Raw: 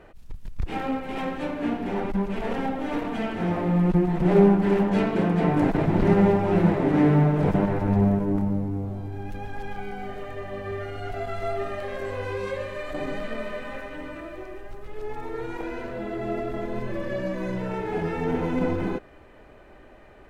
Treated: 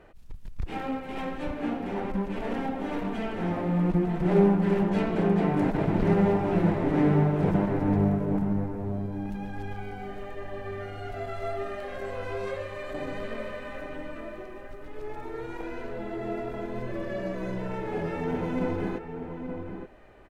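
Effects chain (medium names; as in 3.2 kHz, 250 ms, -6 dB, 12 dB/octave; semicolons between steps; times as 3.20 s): echo from a far wall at 150 m, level -7 dB; trim -4 dB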